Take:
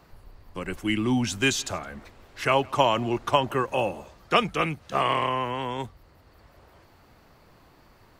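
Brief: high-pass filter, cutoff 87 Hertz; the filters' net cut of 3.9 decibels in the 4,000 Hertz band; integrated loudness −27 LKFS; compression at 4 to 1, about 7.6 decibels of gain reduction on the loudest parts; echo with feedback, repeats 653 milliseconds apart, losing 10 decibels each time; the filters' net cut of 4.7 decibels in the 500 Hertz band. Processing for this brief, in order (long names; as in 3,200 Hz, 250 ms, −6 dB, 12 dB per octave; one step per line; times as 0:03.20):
high-pass filter 87 Hz
parametric band 500 Hz −6 dB
parametric band 4,000 Hz −6 dB
downward compressor 4 to 1, threshold −27 dBFS
repeating echo 653 ms, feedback 32%, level −10 dB
level +6 dB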